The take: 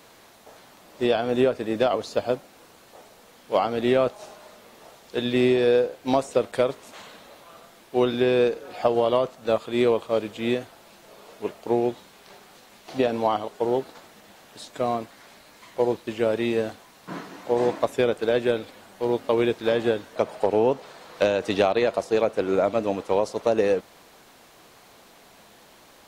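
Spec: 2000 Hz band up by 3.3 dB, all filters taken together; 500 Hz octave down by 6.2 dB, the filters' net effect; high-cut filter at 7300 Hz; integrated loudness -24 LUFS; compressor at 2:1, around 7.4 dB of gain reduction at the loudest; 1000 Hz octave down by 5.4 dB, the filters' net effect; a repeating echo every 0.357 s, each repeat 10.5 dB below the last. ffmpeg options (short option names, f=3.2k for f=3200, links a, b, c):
-af "lowpass=7.3k,equalizer=f=500:t=o:g=-6.5,equalizer=f=1k:t=o:g=-6,equalizer=f=2k:t=o:g=6.5,acompressor=threshold=-33dB:ratio=2,aecho=1:1:357|714|1071:0.299|0.0896|0.0269,volume=11dB"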